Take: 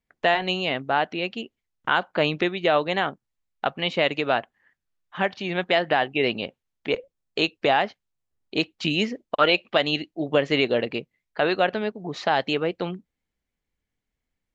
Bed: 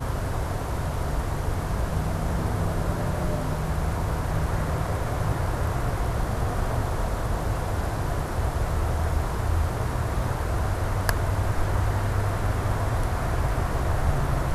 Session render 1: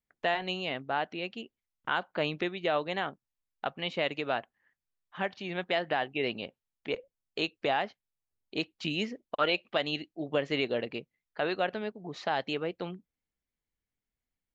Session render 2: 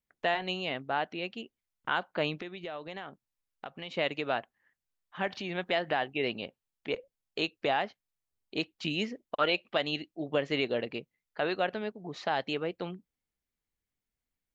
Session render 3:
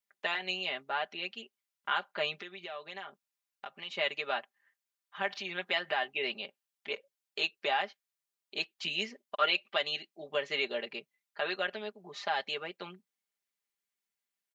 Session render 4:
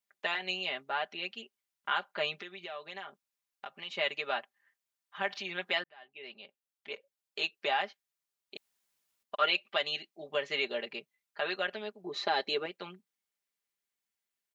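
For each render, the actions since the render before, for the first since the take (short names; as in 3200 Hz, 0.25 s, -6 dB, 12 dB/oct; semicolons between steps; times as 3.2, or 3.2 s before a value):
gain -8.5 dB
2.4–3.91 compressor 3:1, threshold -39 dBFS; 5.27–6.1 upward compressor, threshold -32 dBFS
HPF 1100 Hz 6 dB/oct; comb 5 ms, depth 77%
5.84–7.69 fade in; 8.57–9.23 room tone; 12.04–12.66 small resonant body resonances 340/4000 Hz, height 13 dB, ringing for 20 ms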